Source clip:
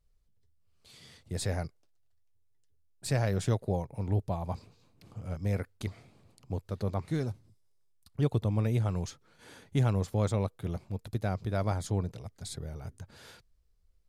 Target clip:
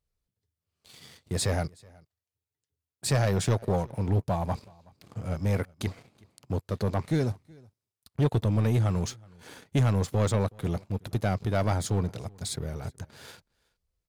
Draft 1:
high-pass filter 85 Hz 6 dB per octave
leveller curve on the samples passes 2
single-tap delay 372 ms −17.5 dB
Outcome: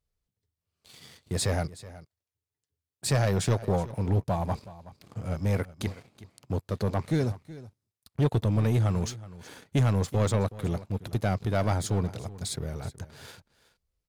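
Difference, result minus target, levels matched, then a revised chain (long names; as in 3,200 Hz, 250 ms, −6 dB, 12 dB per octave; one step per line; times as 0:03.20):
echo-to-direct +8.5 dB
high-pass filter 85 Hz 6 dB per octave
leveller curve on the samples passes 2
single-tap delay 372 ms −26 dB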